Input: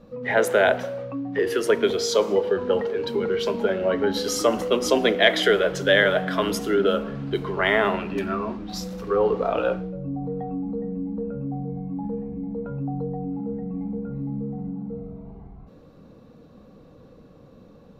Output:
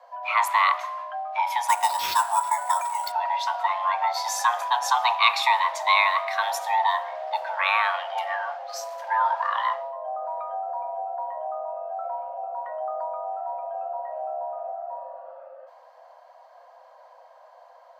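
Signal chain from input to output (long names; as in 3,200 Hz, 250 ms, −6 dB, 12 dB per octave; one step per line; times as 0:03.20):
frequency shifter +490 Hz
0:01.68–0:03.12: sample-rate reduction 8,900 Hz, jitter 0%
level −2 dB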